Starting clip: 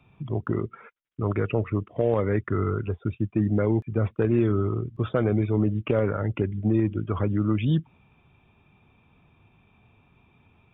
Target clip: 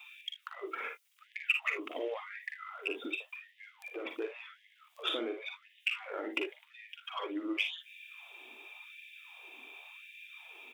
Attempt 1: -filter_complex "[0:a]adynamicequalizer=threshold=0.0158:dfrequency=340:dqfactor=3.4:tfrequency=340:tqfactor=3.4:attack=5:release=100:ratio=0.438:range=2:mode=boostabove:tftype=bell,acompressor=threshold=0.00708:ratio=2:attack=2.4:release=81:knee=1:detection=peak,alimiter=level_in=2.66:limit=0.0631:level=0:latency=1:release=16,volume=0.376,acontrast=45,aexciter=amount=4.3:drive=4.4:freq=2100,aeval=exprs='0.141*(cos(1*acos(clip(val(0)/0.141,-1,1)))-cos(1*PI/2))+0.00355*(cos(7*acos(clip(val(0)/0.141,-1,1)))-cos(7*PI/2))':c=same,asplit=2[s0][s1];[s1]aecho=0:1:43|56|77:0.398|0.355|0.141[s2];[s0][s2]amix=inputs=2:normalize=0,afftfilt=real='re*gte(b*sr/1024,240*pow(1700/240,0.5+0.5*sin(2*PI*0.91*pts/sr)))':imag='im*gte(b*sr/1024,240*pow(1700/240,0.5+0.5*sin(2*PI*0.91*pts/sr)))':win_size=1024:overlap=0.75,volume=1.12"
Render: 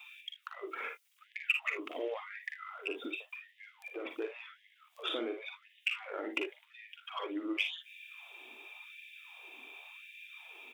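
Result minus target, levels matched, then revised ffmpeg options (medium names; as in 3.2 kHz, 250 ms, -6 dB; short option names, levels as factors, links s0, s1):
compression: peak gain reduction +3.5 dB
-filter_complex "[0:a]adynamicequalizer=threshold=0.0158:dfrequency=340:dqfactor=3.4:tfrequency=340:tqfactor=3.4:attack=5:release=100:ratio=0.438:range=2:mode=boostabove:tftype=bell,acompressor=threshold=0.015:ratio=2:attack=2.4:release=81:knee=1:detection=peak,alimiter=level_in=2.66:limit=0.0631:level=0:latency=1:release=16,volume=0.376,acontrast=45,aexciter=amount=4.3:drive=4.4:freq=2100,aeval=exprs='0.141*(cos(1*acos(clip(val(0)/0.141,-1,1)))-cos(1*PI/2))+0.00355*(cos(7*acos(clip(val(0)/0.141,-1,1)))-cos(7*PI/2))':c=same,asplit=2[s0][s1];[s1]aecho=0:1:43|56|77:0.398|0.355|0.141[s2];[s0][s2]amix=inputs=2:normalize=0,afftfilt=real='re*gte(b*sr/1024,240*pow(1700/240,0.5+0.5*sin(2*PI*0.91*pts/sr)))':imag='im*gte(b*sr/1024,240*pow(1700/240,0.5+0.5*sin(2*PI*0.91*pts/sr)))':win_size=1024:overlap=0.75,volume=1.12"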